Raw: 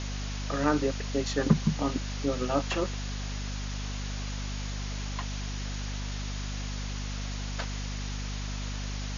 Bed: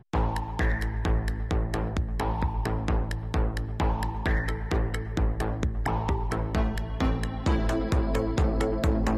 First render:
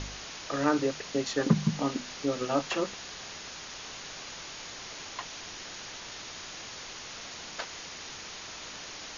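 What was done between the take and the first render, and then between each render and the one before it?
de-hum 50 Hz, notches 5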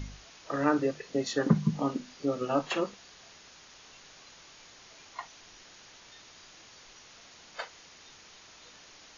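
noise print and reduce 11 dB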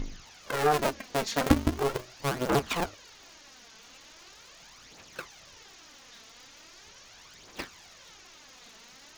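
cycle switcher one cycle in 2, inverted; phaser 0.4 Hz, delay 4.6 ms, feedback 48%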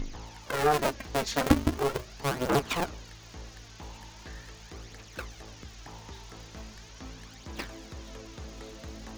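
add bed -19 dB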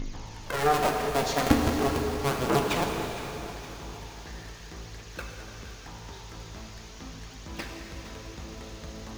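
plate-style reverb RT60 3.5 s, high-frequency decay 0.95×, DRR 1.5 dB; lo-fi delay 0.463 s, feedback 55%, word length 8-bit, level -15 dB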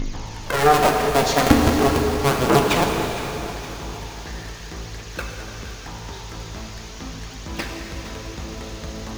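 gain +8.5 dB; limiter -2 dBFS, peak gain reduction 2.5 dB

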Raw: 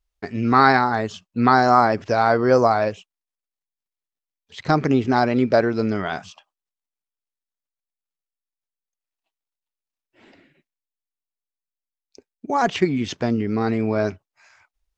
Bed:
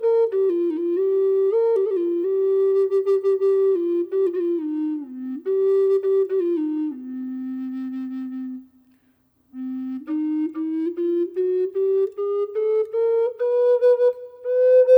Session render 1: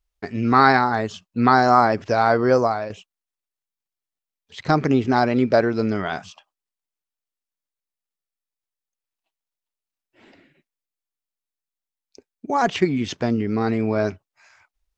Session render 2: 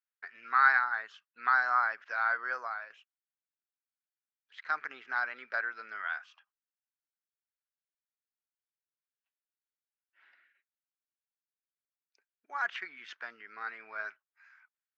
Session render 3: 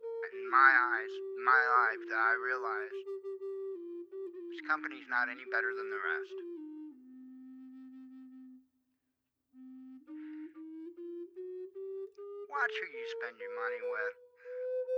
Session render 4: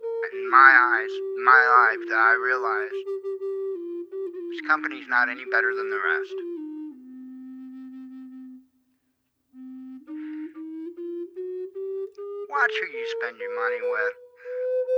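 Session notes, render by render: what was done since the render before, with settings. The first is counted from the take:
2.46–2.9 fade out, to -10.5 dB
ladder band-pass 1700 Hz, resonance 60%
add bed -22.5 dB
gain +11 dB; limiter -2 dBFS, peak gain reduction 1.5 dB

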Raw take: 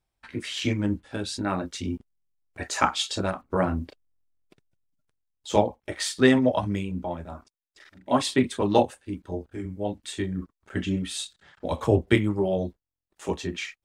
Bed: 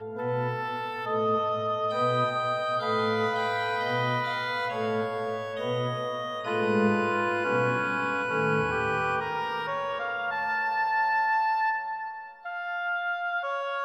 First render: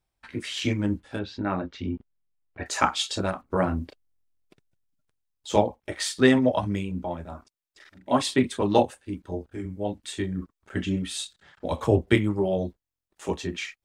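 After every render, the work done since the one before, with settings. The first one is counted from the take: 1.19–2.66 Gaussian blur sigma 2.3 samples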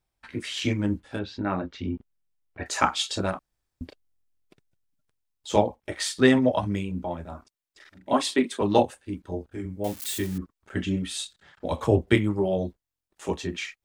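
3.39–3.81 room tone; 8.13–8.61 HPF 220 Hz 24 dB/oct; 9.84–10.38 switching spikes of -27 dBFS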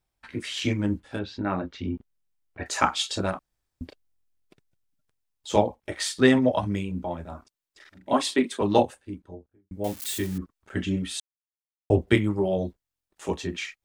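8.76–9.71 studio fade out; 11.2–11.9 mute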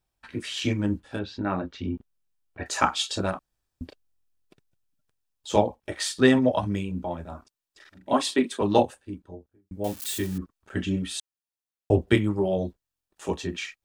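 notch 2100 Hz, Q 12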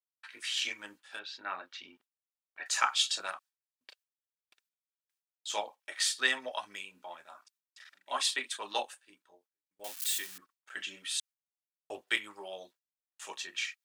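HPF 1500 Hz 12 dB/oct; gate with hold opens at -56 dBFS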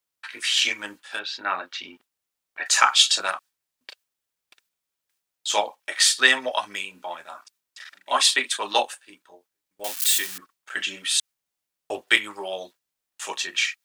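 gain +12 dB; limiter -1 dBFS, peak gain reduction 2.5 dB

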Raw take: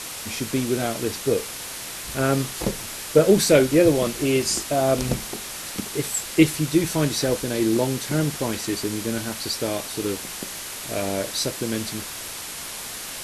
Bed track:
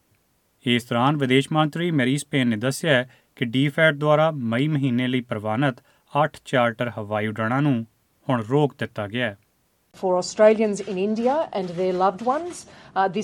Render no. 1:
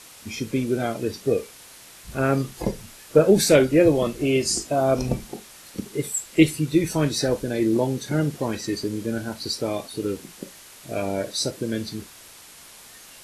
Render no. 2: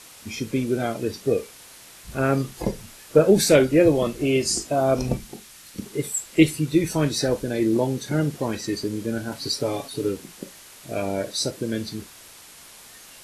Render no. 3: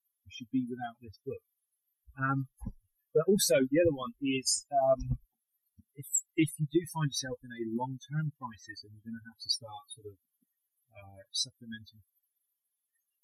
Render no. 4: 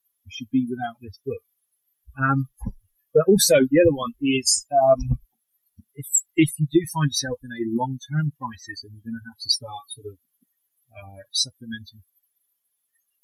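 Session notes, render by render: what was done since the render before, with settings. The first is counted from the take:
noise print and reduce 12 dB
5.17–5.81 bell 580 Hz -6.5 dB 2.1 oct; 9.31–10.09 comb 7.2 ms
per-bin expansion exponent 3; limiter -17.5 dBFS, peak gain reduction 11.5 dB
gain +10 dB

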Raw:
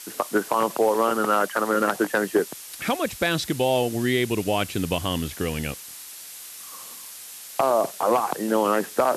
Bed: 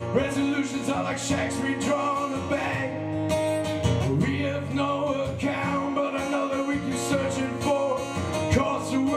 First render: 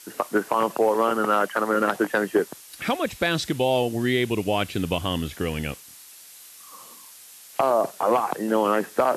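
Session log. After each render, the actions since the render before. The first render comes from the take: noise print and reduce 6 dB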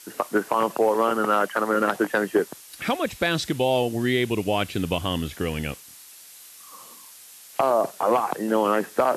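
nothing audible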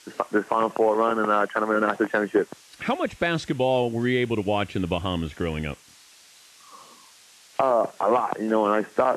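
dynamic EQ 4300 Hz, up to -7 dB, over -48 dBFS, Q 1.5; LPF 6000 Hz 12 dB/oct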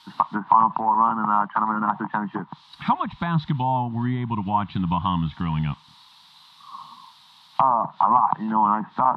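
treble ducked by the level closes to 1300 Hz, closed at -18.5 dBFS; EQ curve 100 Hz 0 dB, 150 Hz +10 dB, 260 Hz -1 dB, 490 Hz -25 dB, 950 Hz +14 dB, 1500 Hz -3 dB, 2500 Hz -6 dB, 3800 Hz +8 dB, 6700 Hz -17 dB, 13000 Hz -7 dB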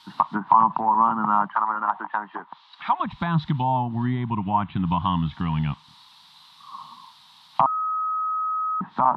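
1.55–3 BPF 540–3800 Hz; 4.3–4.85 LPF 3200 Hz 24 dB/oct; 7.66–8.81 bleep 1270 Hz -22.5 dBFS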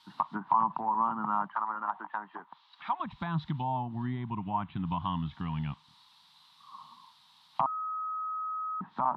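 gain -9.5 dB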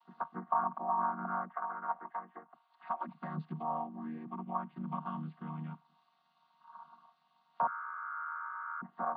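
chord vocoder minor triad, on D#3; band-pass 920 Hz, Q 0.73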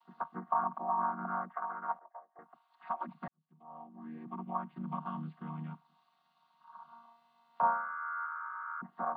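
1.99–2.39 ladder band-pass 660 Hz, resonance 70%; 3.28–4.31 fade in quadratic; 6.85–8.26 flutter echo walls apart 5.9 m, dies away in 0.54 s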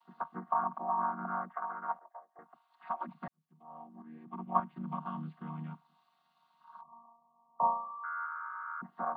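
4.02–4.6 three-band expander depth 100%; 6.81–8.04 brick-wall FIR low-pass 1200 Hz

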